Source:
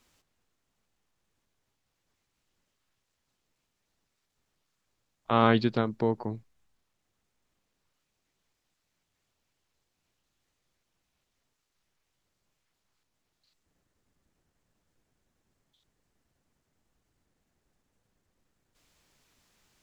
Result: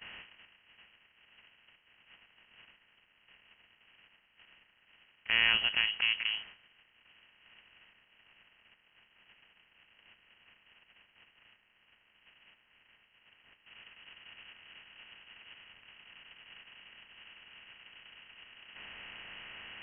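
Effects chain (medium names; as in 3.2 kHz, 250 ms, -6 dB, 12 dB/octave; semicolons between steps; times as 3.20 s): spectral levelling over time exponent 0.4; gate -42 dBFS, range -17 dB; frequency inversion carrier 3.1 kHz; trim -7.5 dB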